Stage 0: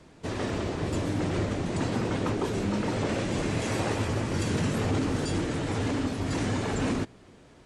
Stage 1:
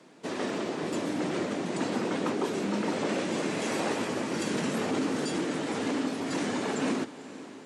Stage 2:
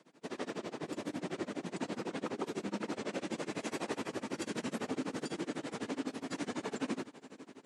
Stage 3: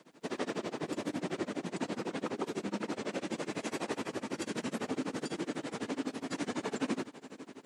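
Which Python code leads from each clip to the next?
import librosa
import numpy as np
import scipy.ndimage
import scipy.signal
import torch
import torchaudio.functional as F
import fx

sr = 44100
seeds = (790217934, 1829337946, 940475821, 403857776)

y1 = scipy.signal.sosfilt(scipy.signal.butter(4, 190.0, 'highpass', fs=sr, output='sos'), x)
y1 = fx.echo_diffused(y1, sr, ms=505, feedback_pct=60, wet_db=-16.0)
y2 = y1 * (1.0 - 0.95 / 2.0 + 0.95 / 2.0 * np.cos(2.0 * np.pi * 12.0 * (np.arange(len(y1)) / sr)))
y2 = y2 * librosa.db_to_amplitude(-5.0)
y3 = fx.rider(y2, sr, range_db=3, speed_s=2.0)
y3 = fx.dmg_crackle(y3, sr, seeds[0], per_s=300.0, level_db=-67.0)
y3 = y3 * librosa.db_to_amplitude(2.0)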